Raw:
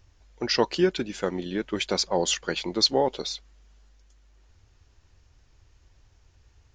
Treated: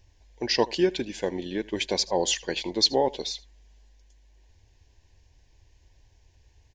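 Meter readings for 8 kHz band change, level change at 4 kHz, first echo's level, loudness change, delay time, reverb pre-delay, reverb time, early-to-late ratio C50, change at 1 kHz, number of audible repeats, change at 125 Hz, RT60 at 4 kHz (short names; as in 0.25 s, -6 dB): 0.0 dB, 0.0 dB, -22.0 dB, -0.5 dB, 79 ms, none, none, none, -0.5 dB, 1, -3.5 dB, none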